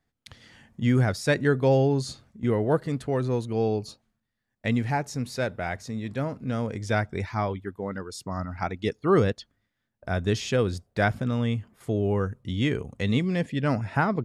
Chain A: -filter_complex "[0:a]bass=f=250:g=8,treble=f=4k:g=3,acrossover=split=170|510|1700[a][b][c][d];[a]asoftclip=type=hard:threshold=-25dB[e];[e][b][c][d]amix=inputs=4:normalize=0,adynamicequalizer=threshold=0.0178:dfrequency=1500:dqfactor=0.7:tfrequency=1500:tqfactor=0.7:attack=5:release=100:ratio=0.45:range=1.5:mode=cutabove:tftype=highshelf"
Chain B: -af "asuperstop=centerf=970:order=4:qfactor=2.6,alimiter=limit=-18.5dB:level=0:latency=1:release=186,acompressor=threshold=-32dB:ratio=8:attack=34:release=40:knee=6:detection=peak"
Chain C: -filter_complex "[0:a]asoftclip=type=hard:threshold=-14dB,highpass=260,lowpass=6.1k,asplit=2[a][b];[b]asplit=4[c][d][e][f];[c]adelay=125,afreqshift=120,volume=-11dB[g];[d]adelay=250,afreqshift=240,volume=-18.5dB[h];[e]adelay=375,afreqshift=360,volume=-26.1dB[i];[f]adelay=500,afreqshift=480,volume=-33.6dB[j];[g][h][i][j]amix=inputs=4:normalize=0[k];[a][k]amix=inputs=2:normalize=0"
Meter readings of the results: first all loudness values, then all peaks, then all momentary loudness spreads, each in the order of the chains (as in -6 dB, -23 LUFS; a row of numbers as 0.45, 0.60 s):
-24.0, -33.5, -29.0 LUFS; -7.0, -19.5, -9.5 dBFS; 9, 5, 11 LU